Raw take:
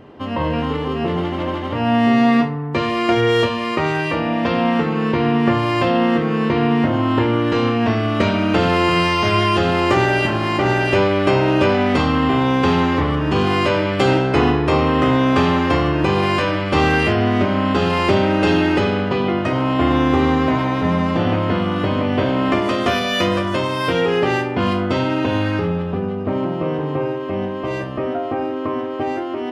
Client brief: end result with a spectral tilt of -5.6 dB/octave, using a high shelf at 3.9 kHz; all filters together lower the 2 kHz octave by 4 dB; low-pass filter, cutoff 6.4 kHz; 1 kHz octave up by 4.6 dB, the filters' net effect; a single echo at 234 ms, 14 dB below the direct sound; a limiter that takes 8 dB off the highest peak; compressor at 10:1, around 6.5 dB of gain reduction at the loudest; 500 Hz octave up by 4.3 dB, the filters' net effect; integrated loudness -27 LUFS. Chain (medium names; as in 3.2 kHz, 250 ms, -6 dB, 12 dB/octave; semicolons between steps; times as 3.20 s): low-pass 6.4 kHz; peaking EQ 500 Hz +4.5 dB; peaking EQ 1 kHz +6 dB; peaking EQ 2 kHz -8.5 dB; treble shelf 3.9 kHz +3.5 dB; compression 10:1, threshold -15 dBFS; peak limiter -14 dBFS; delay 234 ms -14 dB; trim -4.5 dB